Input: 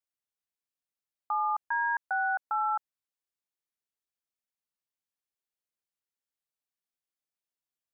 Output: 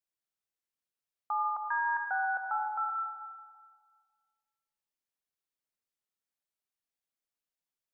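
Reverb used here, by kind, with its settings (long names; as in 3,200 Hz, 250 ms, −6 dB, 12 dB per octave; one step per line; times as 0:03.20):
comb and all-pass reverb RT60 1.8 s, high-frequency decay 0.6×, pre-delay 30 ms, DRR 3.5 dB
level −2.5 dB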